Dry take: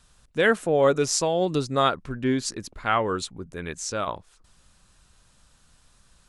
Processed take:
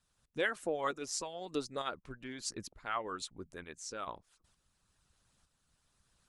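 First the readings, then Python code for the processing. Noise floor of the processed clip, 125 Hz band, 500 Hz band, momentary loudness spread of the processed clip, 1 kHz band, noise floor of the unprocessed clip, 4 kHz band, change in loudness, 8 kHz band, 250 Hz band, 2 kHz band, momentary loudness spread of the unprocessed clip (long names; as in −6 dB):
−79 dBFS, −21.0 dB, −16.0 dB, 11 LU, −13.5 dB, −61 dBFS, −12.0 dB, −14.5 dB, −12.0 dB, −16.5 dB, −12.0 dB, 13 LU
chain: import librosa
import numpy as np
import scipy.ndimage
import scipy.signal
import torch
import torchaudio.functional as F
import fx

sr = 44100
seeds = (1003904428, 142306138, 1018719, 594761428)

y = fx.hpss(x, sr, part='harmonic', gain_db=-16)
y = fx.tremolo_shape(y, sr, shape='saw_up', hz=1.1, depth_pct=50)
y = y * librosa.db_to_amplitude(-7.0)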